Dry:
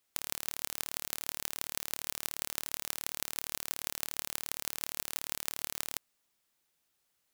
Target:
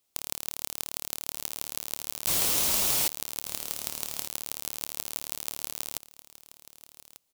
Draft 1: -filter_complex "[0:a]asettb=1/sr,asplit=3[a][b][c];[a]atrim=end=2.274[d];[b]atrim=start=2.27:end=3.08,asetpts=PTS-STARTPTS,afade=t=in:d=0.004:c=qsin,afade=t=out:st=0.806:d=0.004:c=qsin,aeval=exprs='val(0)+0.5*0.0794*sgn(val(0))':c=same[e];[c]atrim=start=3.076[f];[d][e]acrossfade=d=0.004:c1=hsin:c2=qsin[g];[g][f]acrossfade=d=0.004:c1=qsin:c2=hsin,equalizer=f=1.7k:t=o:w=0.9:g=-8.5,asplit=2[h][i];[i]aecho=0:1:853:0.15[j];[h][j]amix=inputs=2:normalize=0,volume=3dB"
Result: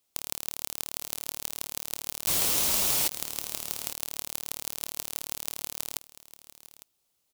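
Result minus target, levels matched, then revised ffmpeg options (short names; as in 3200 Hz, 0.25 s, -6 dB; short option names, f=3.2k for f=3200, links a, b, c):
echo 0.34 s early
-filter_complex "[0:a]asettb=1/sr,asplit=3[a][b][c];[a]atrim=end=2.274[d];[b]atrim=start=2.27:end=3.08,asetpts=PTS-STARTPTS,afade=t=in:d=0.004:c=qsin,afade=t=out:st=0.806:d=0.004:c=qsin,aeval=exprs='val(0)+0.5*0.0794*sgn(val(0))':c=same[e];[c]atrim=start=3.076[f];[d][e]acrossfade=d=0.004:c1=hsin:c2=qsin[g];[g][f]acrossfade=d=0.004:c1=qsin:c2=hsin,equalizer=f=1.7k:t=o:w=0.9:g=-8.5,asplit=2[h][i];[i]aecho=0:1:1193:0.15[j];[h][j]amix=inputs=2:normalize=0,volume=3dB"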